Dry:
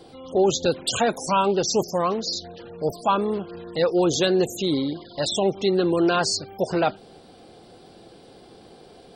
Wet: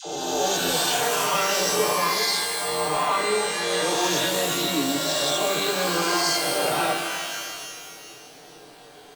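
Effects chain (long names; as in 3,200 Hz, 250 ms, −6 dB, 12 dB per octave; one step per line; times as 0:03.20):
peak hold with a rise ahead of every peak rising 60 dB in 1.66 s
low-shelf EQ 360 Hz −9 dB
comb filter 6.7 ms, depth 85%
brickwall limiter −12.5 dBFS, peak gain reduction 6.5 dB
flanger 0.47 Hz, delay 5.9 ms, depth 9 ms, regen −40%
all-pass dispersion lows, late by 64 ms, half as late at 680 Hz
reverb with rising layers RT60 1.9 s, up +12 semitones, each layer −2 dB, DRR 4 dB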